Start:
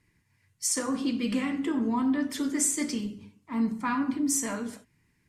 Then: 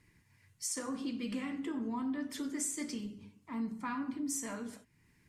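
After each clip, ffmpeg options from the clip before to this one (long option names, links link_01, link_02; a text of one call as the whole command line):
ffmpeg -i in.wav -af "acompressor=threshold=-58dB:ratio=1.5,volume=2dB" out.wav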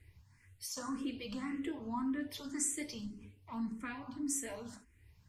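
ffmpeg -i in.wav -filter_complex "[0:a]lowshelf=frequency=110:width_type=q:width=1.5:gain=11.5,asplit=2[link_01][link_02];[link_02]afreqshift=1.8[link_03];[link_01][link_03]amix=inputs=2:normalize=1,volume=2dB" out.wav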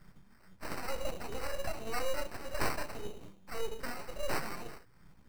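ffmpeg -i in.wav -af "acrusher=samples=13:mix=1:aa=0.000001,aeval=exprs='abs(val(0))':channel_layout=same,volume=6dB" out.wav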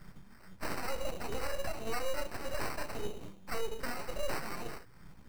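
ffmpeg -i in.wav -af "alimiter=level_in=6dB:limit=-24dB:level=0:latency=1:release=438,volume=-6dB,volume=5.5dB" out.wav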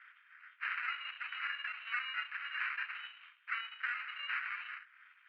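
ffmpeg -i in.wav -filter_complex "[0:a]asplit=2[link_01][link_02];[link_02]acrusher=bits=3:mode=log:mix=0:aa=0.000001,volume=-7dB[link_03];[link_01][link_03]amix=inputs=2:normalize=0,asuperpass=centerf=2000:order=8:qfactor=1.2,volume=4dB" out.wav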